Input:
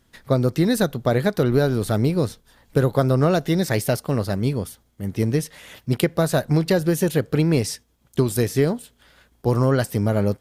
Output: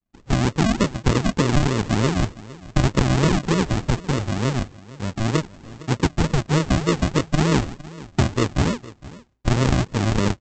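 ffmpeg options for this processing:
-af "agate=range=-33dB:threshold=-48dB:ratio=3:detection=peak,aresample=16000,acrusher=samples=28:mix=1:aa=0.000001:lfo=1:lforange=16.8:lforate=3.3,aresample=44100,aecho=1:1:460:0.112"

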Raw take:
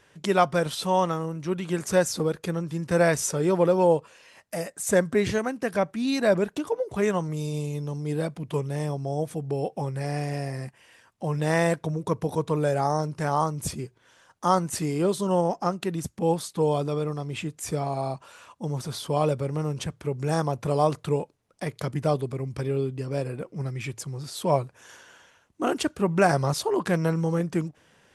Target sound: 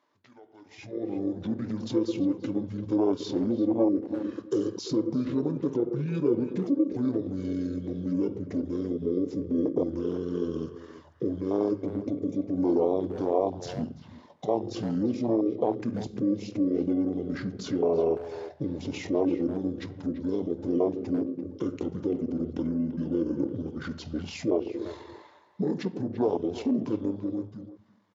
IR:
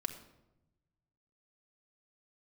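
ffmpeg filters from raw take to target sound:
-filter_complex "[0:a]equalizer=f=2.9k:t=o:w=2.6:g=-4.5,asplit=2[a][b];[1:a]atrim=start_sample=2205,highshelf=f=5.6k:g=-4.5[c];[b][c]afir=irnorm=-1:irlink=0,volume=0dB[d];[a][d]amix=inputs=2:normalize=0,acompressor=threshold=-29dB:ratio=20,flanger=delay=7.7:depth=6.9:regen=-77:speed=0.35:shape=triangular,alimiter=level_in=7dB:limit=-24dB:level=0:latency=1:release=12,volume=-7dB,dynaudnorm=f=120:g=17:m=13dB,afwtdn=0.0562,asetrate=26990,aresample=44100,atempo=1.63392,highpass=350,highshelf=f=7.7k:g=-8.5,asplit=2[e][f];[f]adelay=340,highpass=300,lowpass=3.4k,asoftclip=type=hard:threshold=-28dB,volume=-12dB[g];[e][g]amix=inputs=2:normalize=0,volume=7.5dB"

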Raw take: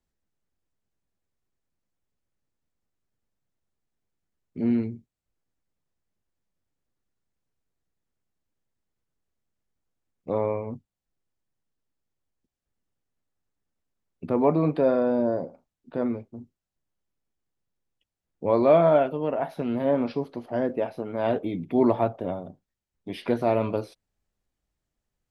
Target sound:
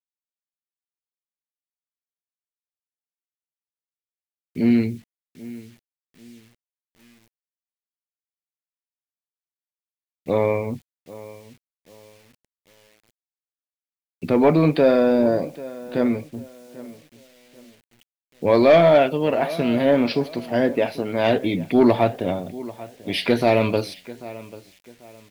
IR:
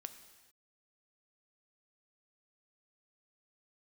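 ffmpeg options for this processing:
-filter_complex "[0:a]equalizer=f=4.4k:t=o:w=0.39:g=5,asplit=2[a][b];[b]adelay=790,lowpass=f=4.1k:p=1,volume=-19dB,asplit=2[c][d];[d]adelay=790,lowpass=f=4.1k:p=1,volume=0.31,asplit=2[e][f];[f]adelay=790,lowpass=f=4.1k:p=1,volume=0.31[g];[a][c][e][g]amix=inputs=4:normalize=0,acrusher=bits=10:mix=0:aa=0.000001,highshelf=f=1.6k:t=q:w=1.5:g=7,aeval=exprs='0.447*sin(PI/2*1.41*val(0)/0.447)':c=same"

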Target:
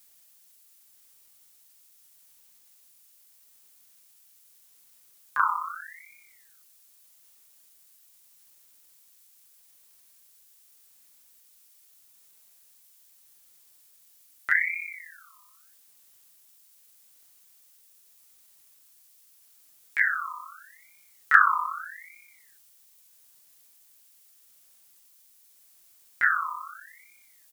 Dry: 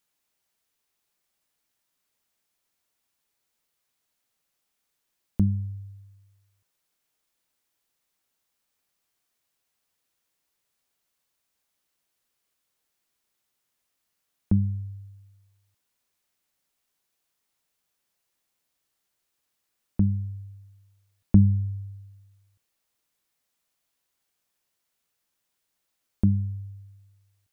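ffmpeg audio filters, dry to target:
-filter_complex "[0:a]asplit=3[a][b][c];[b]asetrate=29433,aresample=44100,atempo=1.49831,volume=-3dB[d];[c]asetrate=66075,aresample=44100,atempo=0.66742,volume=-4dB[e];[a][d][e]amix=inputs=3:normalize=0,crystalizer=i=10:c=0,aeval=exprs='val(0)*sin(2*PI*1700*n/s+1700*0.35/0.81*sin(2*PI*0.81*n/s))':c=same,volume=-2dB"

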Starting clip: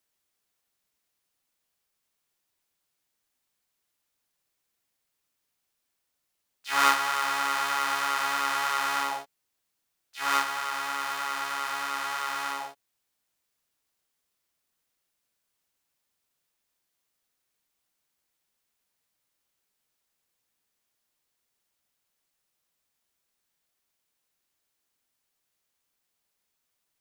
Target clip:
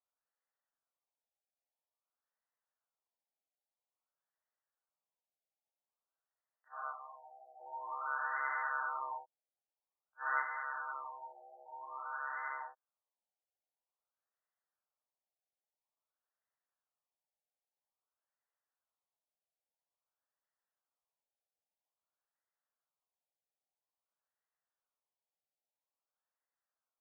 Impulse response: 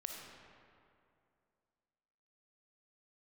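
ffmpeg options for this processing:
-filter_complex "[0:a]highpass=f=430:t=q:w=0.5412,highpass=f=430:t=q:w=1.307,lowpass=f=3.2k:t=q:w=0.5176,lowpass=f=3.2k:t=q:w=0.7071,lowpass=f=3.2k:t=q:w=1.932,afreqshift=83,asplit=3[a][b][c];[a]afade=t=out:st=6.67:d=0.02[d];[b]asplit=3[e][f][g];[e]bandpass=f=730:t=q:w=8,volume=0dB[h];[f]bandpass=f=1.09k:t=q:w=8,volume=-6dB[i];[g]bandpass=f=2.44k:t=q:w=8,volume=-9dB[j];[h][i][j]amix=inputs=3:normalize=0,afade=t=in:st=6.67:d=0.02,afade=t=out:st=7.59:d=0.02[k];[c]afade=t=in:st=7.59:d=0.02[l];[d][k][l]amix=inputs=3:normalize=0,afftfilt=real='re*lt(b*sr/1024,850*pow(2100/850,0.5+0.5*sin(2*PI*0.5*pts/sr)))':imag='im*lt(b*sr/1024,850*pow(2100/850,0.5+0.5*sin(2*PI*0.5*pts/sr)))':win_size=1024:overlap=0.75,volume=-8dB"

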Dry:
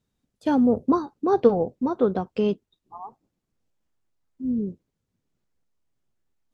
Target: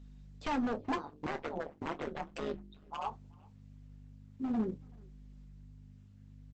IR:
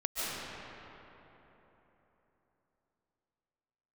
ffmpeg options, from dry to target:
-filter_complex "[0:a]highpass=f=120:p=1,bandreject=f=50:t=h:w=6,bandreject=f=100:t=h:w=6,bandreject=f=150:t=h:w=6,bandreject=f=200:t=h:w=6,bandreject=f=250:t=h:w=6,bandreject=f=300:t=h:w=6,acrossover=split=2800[a][b];[b]acompressor=threshold=-58dB:ratio=4:attack=1:release=60[c];[a][c]amix=inputs=2:normalize=0,equalizer=f=2.3k:w=0.35:g=11.5,acompressor=threshold=-26dB:ratio=10,aeval=exprs='0.0473*(abs(mod(val(0)/0.0473+3,4)-2)-1)':c=same,aeval=exprs='val(0)+0.00316*(sin(2*PI*50*n/s)+sin(2*PI*2*50*n/s)/2+sin(2*PI*3*50*n/s)/3+sin(2*PI*4*50*n/s)/4+sin(2*PI*5*50*n/s)/5)':c=same,flanger=delay=4.1:depth=9.3:regen=-45:speed=0.38:shape=triangular,asplit=3[d][e][f];[d]afade=t=out:st=0.96:d=0.02[g];[e]tremolo=f=150:d=0.974,afade=t=in:st=0.96:d=0.02,afade=t=out:st=3.05:d=0.02[h];[f]afade=t=in:st=3.05:d=0.02[i];[g][h][i]amix=inputs=3:normalize=0,asplit=2[j][k];[k]adelay=27,volume=-12.5dB[l];[j][l]amix=inputs=2:normalize=0,asplit=2[m][n];[n]adelay=380,highpass=300,lowpass=3.4k,asoftclip=type=hard:threshold=-34dB,volume=-25dB[o];[m][o]amix=inputs=2:normalize=0,volume=3.5dB" -ar 48000 -c:a libopus -b:a 12k

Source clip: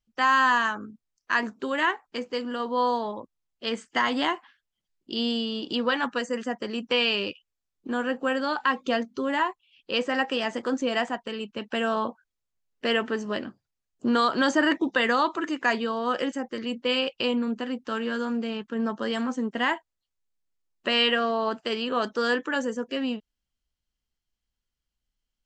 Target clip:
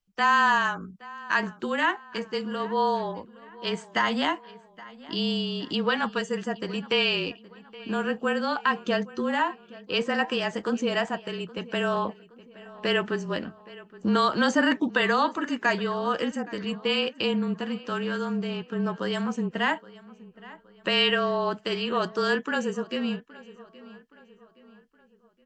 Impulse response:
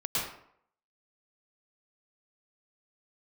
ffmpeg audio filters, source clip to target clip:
-filter_complex "[0:a]afreqshift=-29,asplit=2[a][b];[b]adelay=820,lowpass=f=3.7k:p=1,volume=-19.5dB,asplit=2[c][d];[d]adelay=820,lowpass=f=3.7k:p=1,volume=0.46,asplit=2[e][f];[f]adelay=820,lowpass=f=3.7k:p=1,volume=0.46,asplit=2[g][h];[h]adelay=820,lowpass=f=3.7k:p=1,volume=0.46[i];[c][e][g][i]amix=inputs=4:normalize=0[j];[a][j]amix=inputs=2:normalize=0"

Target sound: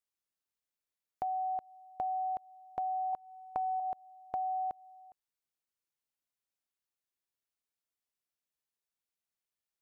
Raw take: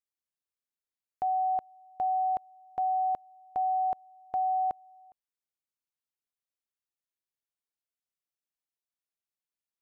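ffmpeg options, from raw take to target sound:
-filter_complex "[0:a]asettb=1/sr,asplit=3[a][b][c];[a]atrim=end=3.134[d];[b]atrim=start=3.13:end=3.8,asetpts=PTS-STARTPTS,afade=t=in:d=0.004:c=qsin,afade=t=out:st=0.666:d=0.004:c=qsin,equalizer=f=1k:t=o:w=0.99:g=7.5[e];[c]atrim=start=3.796[f];[d][e]acrossfade=d=0.004:c1=hsin:c2=qsin[g];[g][f]acrossfade=d=0.004:c1=qsin:c2=hsin,acompressor=threshold=-33dB:ratio=6"

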